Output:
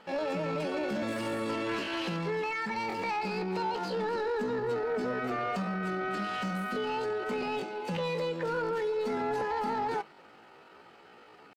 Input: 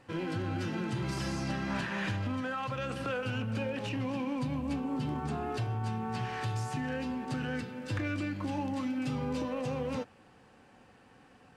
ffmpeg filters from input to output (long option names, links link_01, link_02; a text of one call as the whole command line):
ffmpeg -i in.wav -filter_complex "[0:a]asetrate=74167,aresample=44100,atempo=0.594604,asplit=2[link_01][link_02];[link_02]highpass=frequency=720:poles=1,volume=14dB,asoftclip=type=tanh:threshold=-22.5dB[link_03];[link_01][link_03]amix=inputs=2:normalize=0,lowpass=frequency=1300:poles=1,volume=-6dB,volume=1dB" out.wav